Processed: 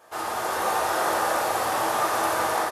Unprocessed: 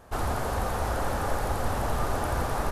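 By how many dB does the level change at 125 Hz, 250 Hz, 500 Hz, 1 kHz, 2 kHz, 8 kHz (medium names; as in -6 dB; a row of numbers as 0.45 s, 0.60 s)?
-15.0 dB, -0.5 dB, +4.5 dB, +7.0 dB, +7.5 dB, +8.5 dB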